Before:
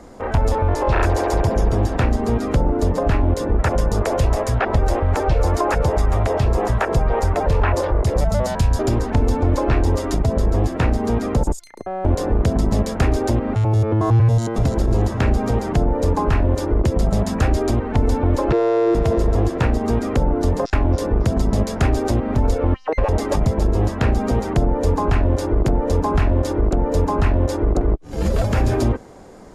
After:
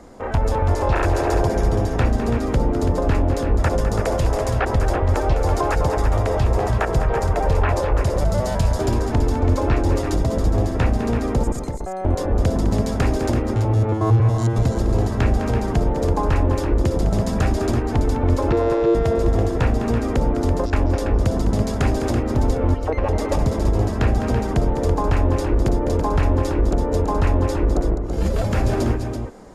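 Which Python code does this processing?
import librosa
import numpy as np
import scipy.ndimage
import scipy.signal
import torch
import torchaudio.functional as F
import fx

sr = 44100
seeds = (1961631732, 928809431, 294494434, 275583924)

y = fx.echo_multitap(x, sr, ms=(206, 332), db=(-10.0, -8.0))
y = y * 10.0 ** (-2.0 / 20.0)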